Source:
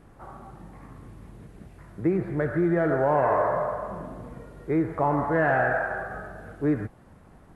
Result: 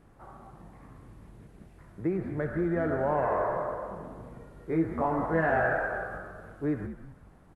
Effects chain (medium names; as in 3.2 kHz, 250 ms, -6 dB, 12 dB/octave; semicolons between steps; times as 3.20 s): 4.67–6.18 s: doubling 18 ms -3 dB; frequency-shifting echo 190 ms, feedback 36%, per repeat -84 Hz, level -11 dB; trim -5.5 dB